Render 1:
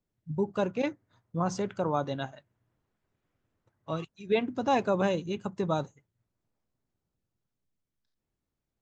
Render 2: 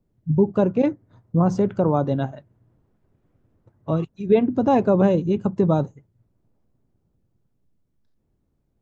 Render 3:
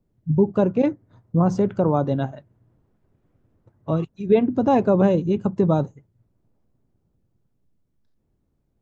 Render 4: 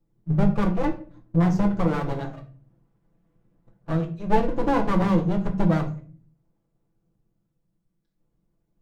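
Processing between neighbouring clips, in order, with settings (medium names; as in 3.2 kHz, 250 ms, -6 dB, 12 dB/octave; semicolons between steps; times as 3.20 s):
in parallel at -2 dB: compression, threshold -36 dBFS, peak gain reduction 14.5 dB; on the sum: tilt shelf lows +9 dB; trim +2.5 dB
no audible change
comb filter that takes the minimum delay 6 ms; simulated room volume 33 m³, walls mixed, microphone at 0.38 m; trim -4 dB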